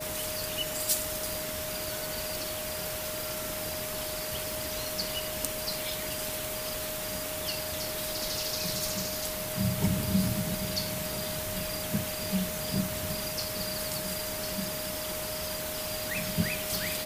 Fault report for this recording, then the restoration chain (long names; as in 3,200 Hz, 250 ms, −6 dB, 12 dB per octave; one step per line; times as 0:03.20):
whistle 620 Hz −38 dBFS
0:04.52: click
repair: click removal
notch filter 620 Hz, Q 30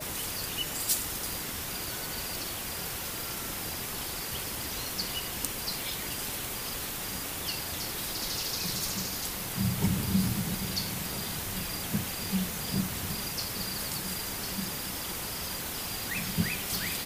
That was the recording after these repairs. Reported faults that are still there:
none of them is left